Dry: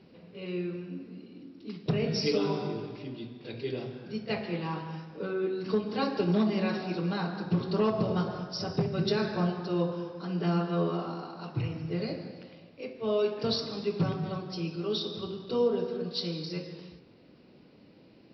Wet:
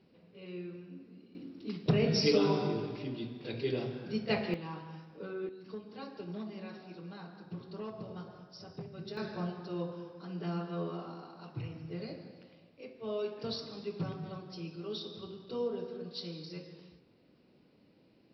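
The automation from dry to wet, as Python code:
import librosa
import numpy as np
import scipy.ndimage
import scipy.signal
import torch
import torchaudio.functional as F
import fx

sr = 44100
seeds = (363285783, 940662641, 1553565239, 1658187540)

y = fx.gain(x, sr, db=fx.steps((0.0, -9.0), (1.35, 1.0), (4.54, -8.0), (5.49, -15.5), (9.17, -8.5)))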